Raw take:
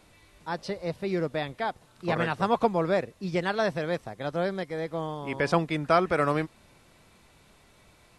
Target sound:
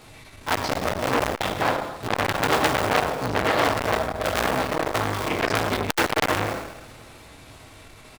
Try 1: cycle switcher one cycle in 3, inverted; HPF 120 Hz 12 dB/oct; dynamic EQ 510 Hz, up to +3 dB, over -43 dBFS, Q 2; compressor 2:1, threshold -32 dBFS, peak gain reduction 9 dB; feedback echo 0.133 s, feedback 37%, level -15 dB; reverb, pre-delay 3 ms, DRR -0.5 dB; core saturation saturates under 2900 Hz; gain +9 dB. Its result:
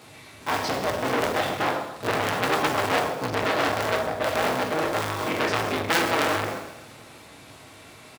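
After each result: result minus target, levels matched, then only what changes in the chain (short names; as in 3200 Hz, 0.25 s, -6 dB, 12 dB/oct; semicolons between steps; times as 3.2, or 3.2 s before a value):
compressor: peak gain reduction +3.5 dB; 125 Hz band -2.5 dB
change: compressor 2:1, threshold -25.5 dBFS, peak gain reduction 6 dB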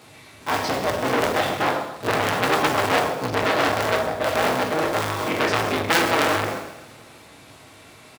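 125 Hz band -2.5 dB
remove: HPF 120 Hz 12 dB/oct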